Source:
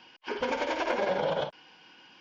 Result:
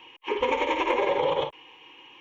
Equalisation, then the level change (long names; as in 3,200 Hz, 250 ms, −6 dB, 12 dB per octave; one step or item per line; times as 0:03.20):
phaser with its sweep stopped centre 1,000 Hz, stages 8
+7.5 dB